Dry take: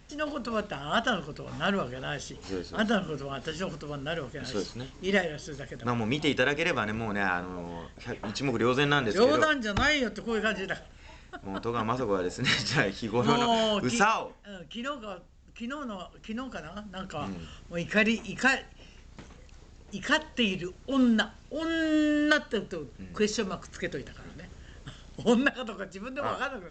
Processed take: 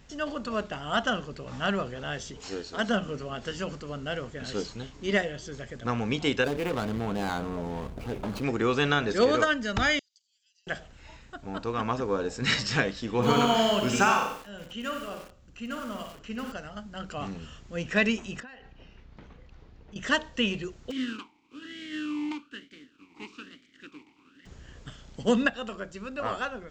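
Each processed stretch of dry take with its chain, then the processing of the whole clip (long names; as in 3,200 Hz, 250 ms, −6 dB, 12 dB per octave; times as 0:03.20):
0:02.40–0:02.89: bass and treble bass −7 dB, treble +3 dB + one half of a high-frequency compander encoder only
0:06.44–0:08.44: running median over 25 samples + envelope flattener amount 50%
0:09.99–0:10.67: downward compressor 3 to 1, threshold −35 dBFS + inverse Chebyshev high-pass filter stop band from 1,200 Hz, stop band 70 dB + high-frequency loss of the air 170 metres
0:13.13–0:16.52: flutter between parallel walls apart 10 metres, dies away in 0.49 s + feedback echo at a low word length 93 ms, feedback 35%, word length 7 bits, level −6.5 dB
0:18.40–0:19.96: downward compressor 12 to 1, threshold −41 dBFS + high-frequency loss of the air 220 metres
0:20.90–0:24.45: compressing power law on the bin magnitudes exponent 0.4 + formant filter swept between two vowels i-u 1.1 Hz
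whole clip: no processing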